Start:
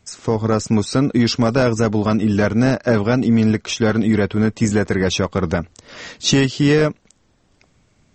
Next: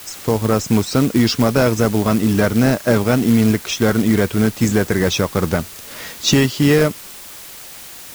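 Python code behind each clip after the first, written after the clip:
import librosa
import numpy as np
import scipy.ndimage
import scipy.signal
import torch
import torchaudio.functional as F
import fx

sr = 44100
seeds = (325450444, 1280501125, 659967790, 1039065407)

y = fx.dmg_noise_colour(x, sr, seeds[0], colour='white', level_db=-37.0)
y = fx.quant_float(y, sr, bits=2)
y = y * librosa.db_to_amplitude(1.0)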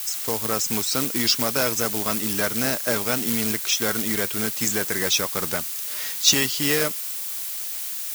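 y = fx.tilt_eq(x, sr, slope=3.5)
y = y * librosa.db_to_amplitude(-6.5)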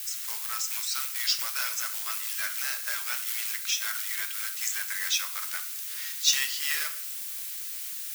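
y = fx.ladder_highpass(x, sr, hz=1100.0, resonance_pct=20)
y = fx.room_shoebox(y, sr, seeds[1], volume_m3=92.0, walls='mixed', distance_m=0.37)
y = y * librosa.db_to_amplitude(-1.5)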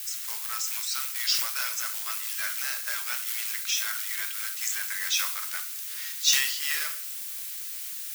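y = fx.sustainer(x, sr, db_per_s=51.0)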